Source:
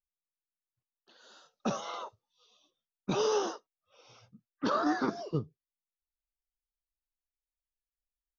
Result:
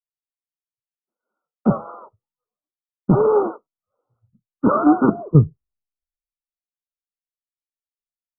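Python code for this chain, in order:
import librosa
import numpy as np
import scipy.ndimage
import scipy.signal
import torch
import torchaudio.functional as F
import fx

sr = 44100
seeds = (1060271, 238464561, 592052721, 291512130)

y = fx.brickwall_lowpass(x, sr, high_hz=1500.0)
y = fx.low_shelf(y, sr, hz=290.0, db=11.5)
y = fx.band_widen(y, sr, depth_pct=100)
y = F.gain(torch.from_numpy(y), 8.0).numpy()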